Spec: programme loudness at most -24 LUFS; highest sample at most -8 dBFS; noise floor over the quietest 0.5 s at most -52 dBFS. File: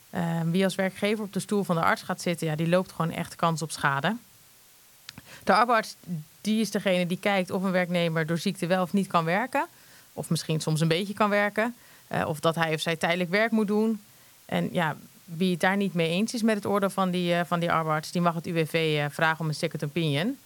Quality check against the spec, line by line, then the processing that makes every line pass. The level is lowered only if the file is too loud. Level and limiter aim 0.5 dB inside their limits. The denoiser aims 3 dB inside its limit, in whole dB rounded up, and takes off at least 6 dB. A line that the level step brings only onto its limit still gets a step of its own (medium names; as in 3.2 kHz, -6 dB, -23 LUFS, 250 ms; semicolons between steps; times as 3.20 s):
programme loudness -26.5 LUFS: pass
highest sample -7.0 dBFS: fail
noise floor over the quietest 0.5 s -56 dBFS: pass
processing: peak limiter -8.5 dBFS